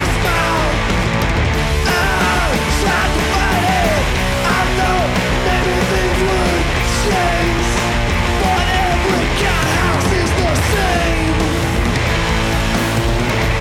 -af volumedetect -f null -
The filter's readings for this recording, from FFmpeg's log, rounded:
mean_volume: -15.0 dB
max_volume: -3.5 dB